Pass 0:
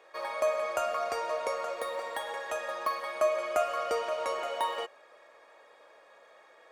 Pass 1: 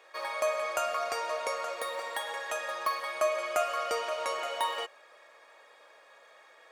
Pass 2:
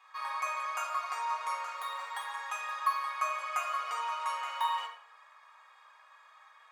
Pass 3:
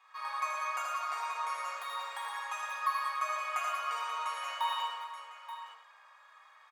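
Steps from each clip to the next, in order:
tilt shelf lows -4.5 dB
ladder high-pass 930 Hz, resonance 60%; reverberation RT60 0.60 s, pre-delay 3 ms, DRR -1 dB
multi-tap echo 81/114/192/401/879 ms -4.5/-6/-7.5/-12.5/-10 dB; trim -3 dB

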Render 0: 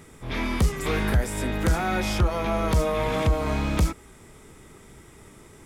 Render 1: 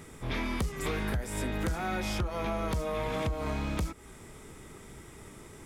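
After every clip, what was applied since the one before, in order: compression, threshold -29 dBFS, peak gain reduction 12 dB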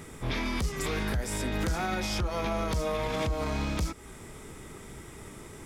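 dynamic bell 5.2 kHz, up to +6 dB, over -56 dBFS, Q 1.3; peak limiter -25 dBFS, peak gain reduction 6.5 dB; trim +3.5 dB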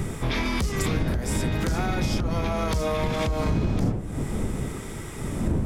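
wind noise 190 Hz -26 dBFS; compression 6:1, threshold -30 dBFS, peak gain reduction 18 dB; trim +8.5 dB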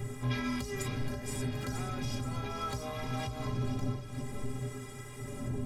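inharmonic resonator 120 Hz, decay 0.26 s, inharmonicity 0.03; thinning echo 474 ms, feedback 69%, high-pass 1.1 kHz, level -10 dB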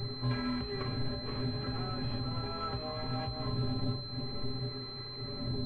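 class-D stage that switches slowly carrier 4.1 kHz

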